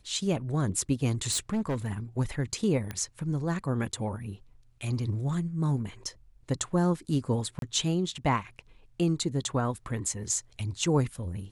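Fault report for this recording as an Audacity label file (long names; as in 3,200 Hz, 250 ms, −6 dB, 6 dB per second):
1.310000	1.930000	clipping −25 dBFS
2.910000	2.910000	click −20 dBFS
7.590000	7.620000	drop-out 32 ms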